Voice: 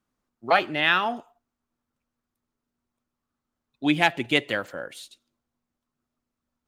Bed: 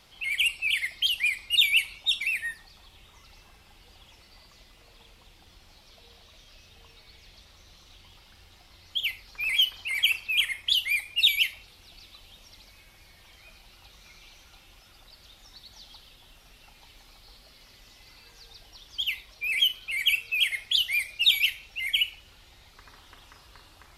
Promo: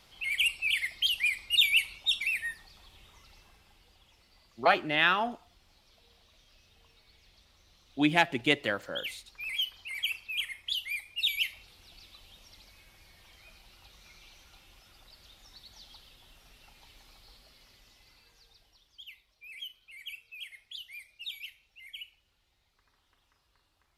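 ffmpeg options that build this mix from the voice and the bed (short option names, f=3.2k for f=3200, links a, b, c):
-filter_complex "[0:a]adelay=4150,volume=-3.5dB[a];[1:a]volume=3dB,afade=t=out:st=3.05:d=0.93:silence=0.473151,afade=t=in:st=11.2:d=0.48:silence=0.530884,afade=t=out:st=17.13:d=1.88:silence=0.158489[b];[a][b]amix=inputs=2:normalize=0"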